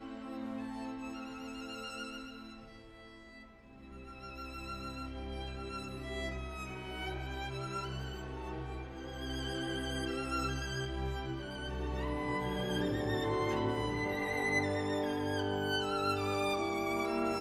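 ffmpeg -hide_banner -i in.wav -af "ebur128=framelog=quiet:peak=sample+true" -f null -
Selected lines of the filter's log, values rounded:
Integrated loudness:
  I:         -37.0 LUFS
  Threshold: -47.5 LUFS
Loudness range:
  LRA:        12.5 LU
  Threshold: -57.8 LUFS
  LRA low:   -46.1 LUFS
  LRA high:  -33.6 LUFS
Sample peak:
  Peak:      -19.9 dBFS
True peak:
  Peak:      -19.9 dBFS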